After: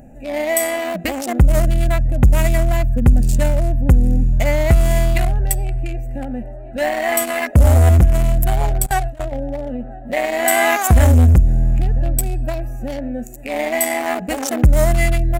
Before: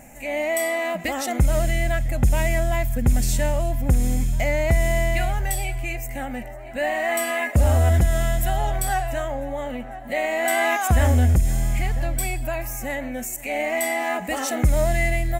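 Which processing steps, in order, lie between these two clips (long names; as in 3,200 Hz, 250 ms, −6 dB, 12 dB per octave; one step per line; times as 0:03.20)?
adaptive Wiener filter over 41 samples
0:08.86–0:09.32: noise gate with hold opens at −18 dBFS
high-shelf EQ 6,000 Hz +7.5 dB
level +7 dB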